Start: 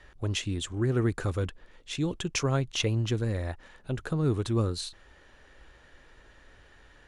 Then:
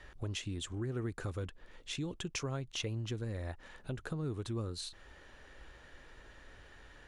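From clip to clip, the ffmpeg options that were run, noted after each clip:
ffmpeg -i in.wav -af "acompressor=threshold=-40dB:ratio=2.5" out.wav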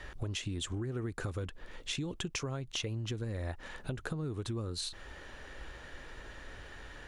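ffmpeg -i in.wav -af "acompressor=threshold=-41dB:ratio=6,volume=7.5dB" out.wav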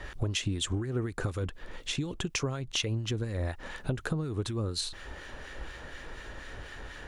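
ffmpeg -i in.wav -filter_complex "[0:a]acrossover=split=1300[link_01][link_02];[link_01]aeval=exprs='val(0)*(1-0.5/2+0.5/2*cos(2*PI*4.1*n/s))':channel_layout=same[link_03];[link_02]aeval=exprs='val(0)*(1-0.5/2-0.5/2*cos(2*PI*4.1*n/s))':channel_layout=same[link_04];[link_03][link_04]amix=inputs=2:normalize=0,volume=7dB" out.wav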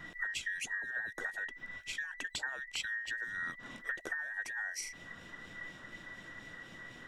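ffmpeg -i in.wav -af "afftfilt=real='real(if(between(b,1,1012),(2*floor((b-1)/92)+1)*92-b,b),0)':imag='imag(if(between(b,1,1012),(2*floor((b-1)/92)+1)*92-b,b),0)*if(between(b,1,1012),-1,1)':win_size=2048:overlap=0.75,volume=-7.5dB" out.wav

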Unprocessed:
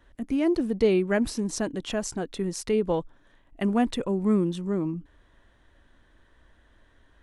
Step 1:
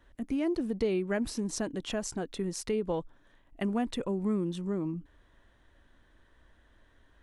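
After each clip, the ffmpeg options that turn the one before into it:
ffmpeg -i in.wav -af "acompressor=threshold=-26dB:ratio=2,volume=-3dB" out.wav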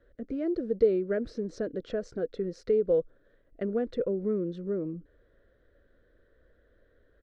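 ffmpeg -i in.wav -af "firequalizer=gain_entry='entry(290,0);entry(490,14);entry(880,-16);entry(1400,2);entry(2700,-12);entry(4200,-5);entry(9200,-29)':delay=0.05:min_phase=1,volume=-3dB" out.wav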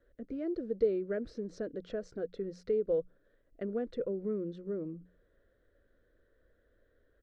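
ffmpeg -i in.wav -af "bandreject=frequency=60:width_type=h:width=6,bandreject=frequency=120:width_type=h:width=6,bandreject=frequency=180:width_type=h:width=6,volume=-5.5dB" out.wav

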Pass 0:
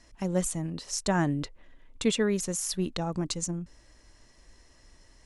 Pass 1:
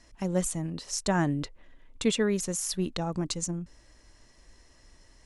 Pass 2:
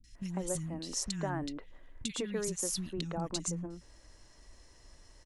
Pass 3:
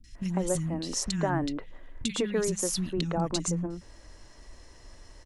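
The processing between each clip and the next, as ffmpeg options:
ffmpeg -i in.wav -af anull out.wav
ffmpeg -i in.wav -filter_complex "[0:a]acompressor=threshold=-32dB:ratio=3,acrossover=split=230|2100[link_01][link_02][link_03];[link_03]adelay=40[link_04];[link_02]adelay=150[link_05];[link_01][link_05][link_04]amix=inputs=3:normalize=0" out.wav
ffmpeg -i in.wav -af "highshelf=frequency=4100:gain=-5.5,bandreject=frequency=50:width_type=h:width=6,bandreject=frequency=100:width_type=h:width=6,bandreject=frequency=150:width_type=h:width=6,bandreject=frequency=200:width_type=h:width=6,volume=8dB" out.wav

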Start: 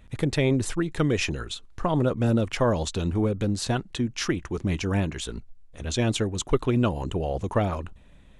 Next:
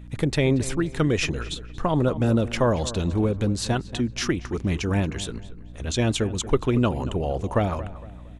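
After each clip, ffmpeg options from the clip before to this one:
ffmpeg -i in.wav -filter_complex "[0:a]aeval=exprs='val(0)+0.00794*(sin(2*PI*60*n/s)+sin(2*PI*2*60*n/s)/2+sin(2*PI*3*60*n/s)/3+sin(2*PI*4*60*n/s)/4+sin(2*PI*5*60*n/s)/5)':channel_layout=same,asplit=2[link_01][link_02];[link_02]adelay=231,lowpass=frequency=2600:poles=1,volume=-15dB,asplit=2[link_03][link_04];[link_04]adelay=231,lowpass=frequency=2600:poles=1,volume=0.39,asplit=2[link_05][link_06];[link_06]adelay=231,lowpass=frequency=2600:poles=1,volume=0.39,asplit=2[link_07][link_08];[link_08]adelay=231,lowpass=frequency=2600:poles=1,volume=0.39[link_09];[link_01][link_03][link_05][link_07][link_09]amix=inputs=5:normalize=0,volume=1.5dB" out.wav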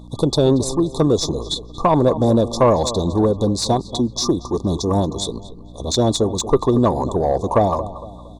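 ffmpeg -i in.wav -filter_complex "[0:a]afftfilt=real='re*(1-between(b*sr/4096,1200,3400))':imag='im*(1-between(b*sr/4096,1200,3400))':win_size=4096:overlap=0.75,asplit=2[link_01][link_02];[link_02]highpass=frequency=720:poles=1,volume=13dB,asoftclip=type=tanh:threshold=-9dB[link_03];[link_01][link_03]amix=inputs=2:normalize=0,lowpass=frequency=3400:poles=1,volume=-6dB,adynamicequalizer=threshold=0.00794:dfrequency=2800:dqfactor=0.91:tfrequency=2800:tqfactor=0.91:attack=5:release=100:ratio=0.375:range=2:mode=cutabove:tftype=bell,volume=6dB" out.wav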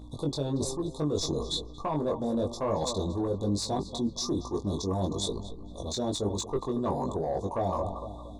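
ffmpeg -i in.wav -af "areverse,acompressor=threshold=-22dB:ratio=6,areverse,flanger=delay=19.5:depth=2.1:speed=1.1,volume=-2dB" out.wav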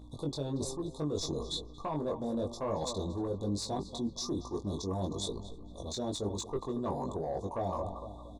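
ffmpeg -i in.wav -filter_complex "[0:a]asplit=2[link_01][link_02];[link_02]adelay=303.2,volume=-28dB,highshelf=frequency=4000:gain=-6.82[link_03];[link_01][link_03]amix=inputs=2:normalize=0,volume=-5dB" out.wav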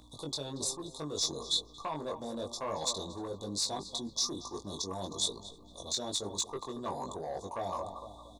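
ffmpeg -i in.wav -filter_complex "[0:a]tiltshelf=frequency=860:gain=-8,acrossover=split=100|1500[link_01][link_02][link_03];[link_01]alimiter=level_in=29dB:limit=-24dB:level=0:latency=1:release=230,volume=-29dB[link_04];[link_04][link_02][link_03]amix=inputs=3:normalize=0" out.wav

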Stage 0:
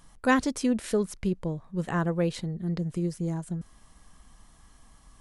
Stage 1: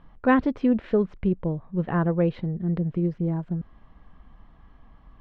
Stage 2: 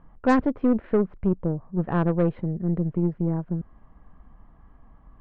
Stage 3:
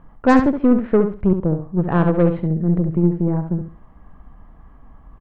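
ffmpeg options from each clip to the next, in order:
ffmpeg -i in.wav -af "lowpass=frequency=3300:width=0.5412,lowpass=frequency=3300:width=1.3066,highshelf=frequency=2000:gain=-11.5,volume=4.5dB" out.wav
ffmpeg -i in.wav -af "lowpass=1600,aeval=exprs='0.422*(cos(1*acos(clip(val(0)/0.422,-1,1)))-cos(1*PI/2))+0.0237*(cos(8*acos(clip(val(0)/0.422,-1,1)))-cos(8*PI/2))':channel_layout=same" out.wav
ffmpeg -i in.wav -af "aecho=1:1:69|138|207:0.398|0.0836|0.0176,volume=6dB" out.wav

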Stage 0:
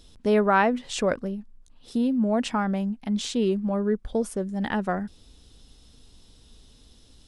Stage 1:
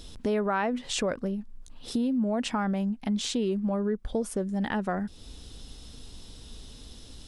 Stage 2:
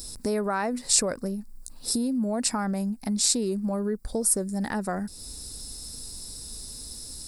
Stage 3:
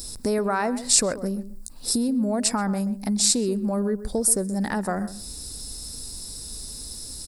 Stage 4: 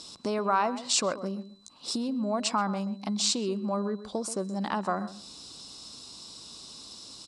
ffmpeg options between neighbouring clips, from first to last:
ffmpeg -i in.wav -filter_complex "[0:a]asplit=2[link_01][link_02];[link_02]alimiter=limit=-19.5dB:level=0:latency=1:release=73,volume=3dB[link_03];[link_01][link_03]amix=inputs=2:normalize=0,acompressor=threshold=-33dB:ratio=2" out.wav
ffmpeg -i in.wav -af "aexciter=amount=10.4:drive=4.1:freq=4600,equalizer=frequency=3150:width_type=o:width=0.33:gain=-10,equalizer=frequency=6300:width_type=o:width=0.33:gain=-11,equalizer=frequency=10000:width_type=o:width=0.33:gain=-3" out.wav
ffmpeg -i in.wav -filter_complex "[0:a]asplit=2[link_01][link_02];[link_02]adelay=130,lowpass=frequency=1300:poles=1,volume=-12.5dB,asplit=2[link_03][link_04];[link_04]adelay=130,lowpass=frequency=1300:poles=1,volume=0.18[link_05];[link_01][link_03][link_05]amix=inputs=3:normalize=0,volume=3dB" out.wav
ffmpeg -i in.wav -af "highpass=210,equalizer=frequency=250:width_type=q:width=4:gain=-4,equalizer=frequency=450:width_type=q:width=4:gain=-6,equalizer=frequency=1100:width_type=q:width=4:gain=9,equalizer=frequency=1800:width_type=q:width=4:gain=-8,equalizer=frequency=3000:width_type=q:width=4:gain=9,equalizer=frequency=5100:width_type=q:width=4:gain=-4,lowpass=frequency=6300:width=0.5412,lowpass=frequency=6300:width=1.3066,aeval=exprs='val(0)+0.00126*sin(2*PI*4000*n/s)':channel_layout=same,volume=-2dB" out.wav

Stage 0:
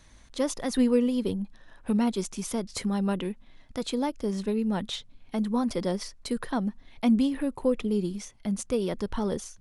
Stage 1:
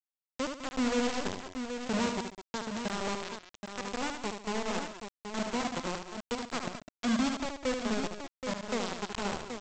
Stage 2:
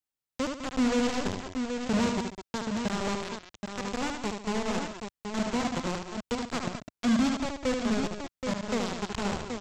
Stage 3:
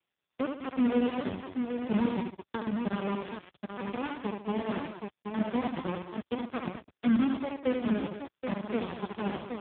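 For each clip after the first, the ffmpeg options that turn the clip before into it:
ffmpeg -i in.wav -af "aresample=16000,acrusher=bits=3:mix=0:aa=0.000001,aresample=44100,aecho=1:1:74|142|205|208|777:0.501|0.158|0.251|0.133|0.422,volume=-8.5dB" out.wav
ffmpeg -i in.wav -af "asoftclip=type=tanh:threshold=-23.5dB,equalizer=frequency=83:width=0.42:gain=7.5,volume=3dB" out.wav
ffmpeg -i in.wav -af "areverse,acompressor=mode=upward:threshold=-39dB:ratio=2.5,areverse" -ar 8000 -c:a libopencore_amrnb -b:a 4750 out.amr

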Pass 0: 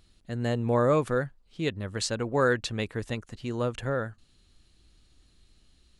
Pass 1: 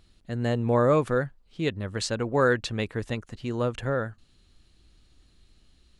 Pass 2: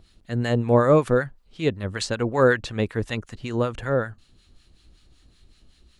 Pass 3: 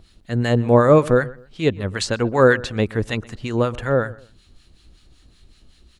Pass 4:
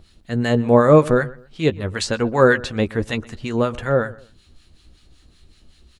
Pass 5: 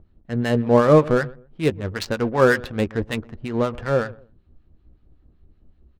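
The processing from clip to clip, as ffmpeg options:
ffmpeg -i in.wav -af "highshelf=frequency=5500:gain=-5,volume=2dB" out.wav
ffmpeg -i in.wav -filter_complex "[0:a]acrossover=split=970[link_01][link_02];[link_01]aeval=exprs='val(0)*(1-0.7/2+0.7/2*cos(2*PI*5.3*n/s))':channel_layout=same[link_03];[link_02]aeval=exprs='val(0)*(1-0.7/2-0.7/2*cos(2*PI*5.3*n/s))':channel_layout=same[link_04];[link_03][link_04]amix=inputs=2:normalize=0,volume=7dB" out.wav
ffmpeg -i in.wav -filter_complex "[0:a]asplit=2[link_01][link_02];[link_02]adelay=125,lowpass=frequency=1900:poles=1,volume=-19.5dB,asplit=2[link_03][link_04];[link_04]adelay=125,lowpass=frequency=1900:poles=1,volume=0.3[link_05];[link_01][link_03][link_05]amix=inputs=3:normalize=0,volume=4dB" out.wav
ffmpeg -i in.wav -filter_complex "[0:a]asplit=2[link_01][link_02];[link_02]adelay=13,volume=-10.5dB[link_03];[link_01][link_03]amix=inputs=2:normalize=0" out.wav
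ffmpeg -i in.wav -af "adynamicsmooth=sensitivity=2.5:basefreq=820,volume=-2dB" out.wav

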